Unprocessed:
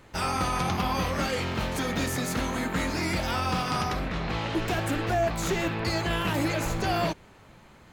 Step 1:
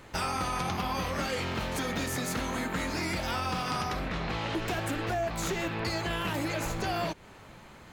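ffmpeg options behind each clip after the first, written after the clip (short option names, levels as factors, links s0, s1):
-af "acompressor=threshold=0.0224:ratio=3,lowshelf=f=350:g=-2.5,volume=1.5"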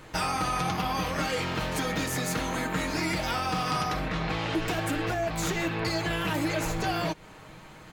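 -af "aecho=1:1:6.4:0.44,volume=1.26"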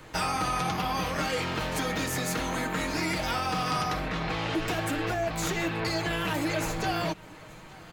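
-filter_complex "[0:a]acrossover=split=300|510|2400[s0][s1][s2][s3];[s0]asoftclip=type=hard:threshold=0.0251[s4];[s4][s1][s2][s3]amix=inputs=4:normalize=0,aecho=1:1:880:0.0631"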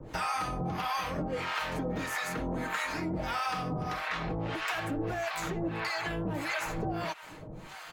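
-filter_complex "[0:a]acrossover=split=770|2500[s0][s1][s2];[s0]acompressor=threshold=0.0158:ratio=4[s3];[s1]acompressor=threshold=0.0158:ratio=4[s4];[s2]acompressor=threshold=0.00355:ratio=4[s5];[s3][s4][s5]amix=inputs=3:normalize=0,acrossover=split=700[s6][s7];[s6]aeval=exprs='val(0)*(1-1/2+1/2*cos(2*PI*1.6*n/s))':c=same[s8];[s7]aeval=exprs='val(0)*(1-1/2-1/2*cos(2*PI*1.6*n/s))':c=same[s9];[s8][s9]amix=inputs=2:normalize=0,volume=2"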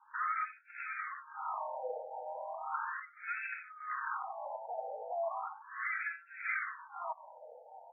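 -af "afftfilt=real='re*between(b*sr/1024,640*pow(1900/640,0.5+0.5*sin(2*PI*0.36*pts/sr))/1.41,640*pow(1900/640,0.5+0.5*sin(2*PI*0.36*pts/sr))*1.41)':imag='im*between(b*sr/1024,640*pow(1900/640,0.5+0.5*sin(2*PI*0.36*pts/sr))/1.41,640*pow(1900/640,0.5+0.5*sin(2*PI*0.36*pts/sr))*1.41)':win_size=1024:overlap=0.75"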